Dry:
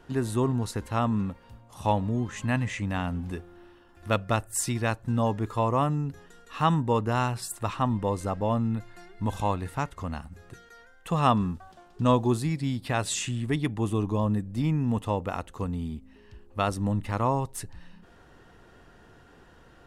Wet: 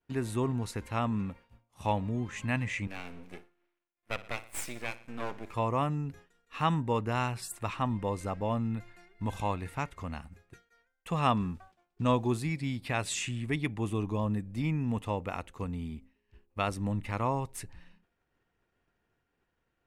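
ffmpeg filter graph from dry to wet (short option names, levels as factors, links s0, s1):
-filter_complex "[0:a]asettb=1/sr,asplit=3[s0][s1][s2];[s0]atrim=end=2.874[s3];[s1]atrim=start=2.87:end=5.54,asetpts=PTS-STARTPTS,afade=t=in:d=0.004:c=qsin,afade=t=out:st=2.666:d=0.004:c=qsin,highpass=250,aeval=exprs='max(val(0),0)':c=same,aecho=1:1:60|120|180|240|300:0.141|0.0819|0.0475|0.0276|0.016,atrim=end_sample=117747[s4];[s2]atrim=start=5.536[s5];[s3][s4]acrossfade=d=0.004:c1=hsin:c2=qsin[s6];[s6][s5]acrossfade=d=0.004:c1=qsin:c2=hsin,equalizer=f=2300:w=3.2:g=9,agate=range=0.0224:threshold=0.01:ratio=3:detection=peak,volume=0.562"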